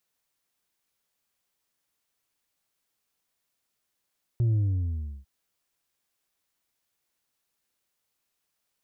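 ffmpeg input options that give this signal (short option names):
-f lavfi -i "aevalsrc='0.0891*clip((0.85-t)/0.72,0,1)*tanh(1.5*sin(2*PI*120*0.85/log(65/120)*(exp(log(65/120)*t/0.85)-1)))/tanh(1.5)':d=0.85:s=44100"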